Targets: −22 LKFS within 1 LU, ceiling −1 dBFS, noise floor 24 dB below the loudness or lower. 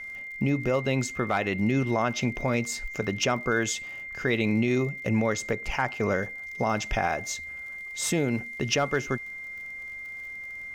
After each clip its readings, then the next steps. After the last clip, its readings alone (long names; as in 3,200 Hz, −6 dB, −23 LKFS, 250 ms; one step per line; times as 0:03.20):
crackle rate 48 per second; interfering tone 2,100 Hz; level of the tone −36 dBFS; integrated loudness −28.0 LKFS; sample peak −11.5 dBFS; target loudness −22.0 LKFS
→ click removal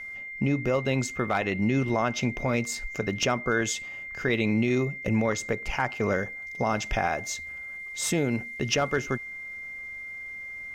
crackle rate 0.28 per second; interfering tone 2,100 Hz; level of the tone −36 dBFS
→ notch filter 2,100 Hz, Q 30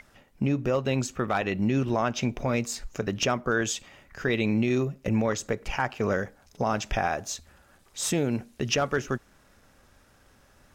interfering tone none found; integrated loudness −28.0 LKFS; sample peak −12.0 dBFS; target loudness −22.0 LKFS
→ level +6 dB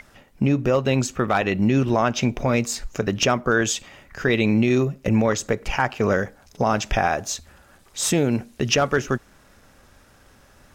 integrated loudness −22.0 LKFS; sample peak −6.0 dBFS; background noise floor −54 dBFS